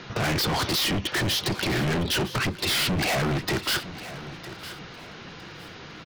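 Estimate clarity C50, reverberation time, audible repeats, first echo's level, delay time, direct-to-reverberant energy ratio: no reverb audible, no reverb audible, 2, −15.0 dB, 958 ms, no reverb audible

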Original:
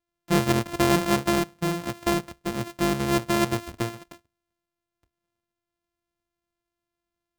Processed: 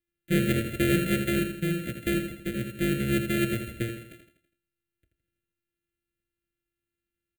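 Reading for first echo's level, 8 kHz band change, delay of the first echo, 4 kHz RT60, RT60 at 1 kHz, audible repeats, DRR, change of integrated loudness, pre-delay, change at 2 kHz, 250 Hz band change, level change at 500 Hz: −7.5 dB, −5.5 dB, 82 ms, no reverb audible, no reverb audible, 5, no reverb audible, −2.5 dB, no reverb audible, −1.0 dB, −1.5 dB, −4.0 dB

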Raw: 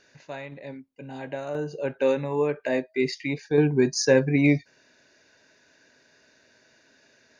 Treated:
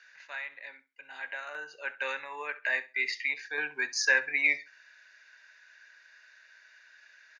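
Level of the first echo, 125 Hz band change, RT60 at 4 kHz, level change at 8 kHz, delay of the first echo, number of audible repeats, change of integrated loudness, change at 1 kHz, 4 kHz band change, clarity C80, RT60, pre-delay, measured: −18.0 dB, below −40 dB, no reverb audible, can't be measured, 67 ms, 2, −6.0 dB, −5.5 dB, −2.5 dB, no reverb audible, no reverb audible, no reverb audible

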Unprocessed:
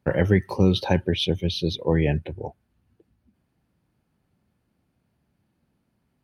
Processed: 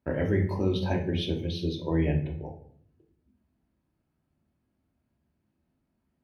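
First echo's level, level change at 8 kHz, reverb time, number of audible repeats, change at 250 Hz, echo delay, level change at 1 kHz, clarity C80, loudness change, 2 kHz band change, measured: no echo audible, can't be measured, 0.60 s, no echo audible, −5.0 dB, no echo audible, −6.5 dB, 13.0 dB, −6.0 dB, −7.5 dB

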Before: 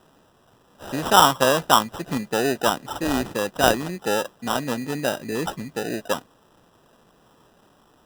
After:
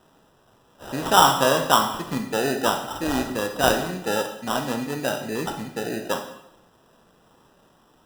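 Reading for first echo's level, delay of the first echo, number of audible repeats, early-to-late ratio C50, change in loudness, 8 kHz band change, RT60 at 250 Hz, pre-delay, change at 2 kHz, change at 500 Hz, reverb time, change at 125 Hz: no echo audible, no echo audible, no echo audible, 7.5 dB, −0.5 dB, −0.5 dB, 0.80 s, 9 ms, −0.5 dB, −1.0 dB, 0.80 s, −0.5 dB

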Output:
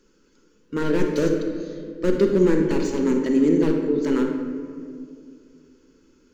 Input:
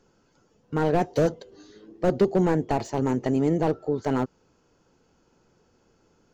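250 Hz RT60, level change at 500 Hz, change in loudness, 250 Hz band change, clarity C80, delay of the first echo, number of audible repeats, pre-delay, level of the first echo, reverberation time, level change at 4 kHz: 3.0 s, +3.5 dB, +3.0 dB, +6.0 dB, 5.5 dB, no echo audible, no echo audible, 33 ms, no echo audible, 2.3 s, +4.5 dB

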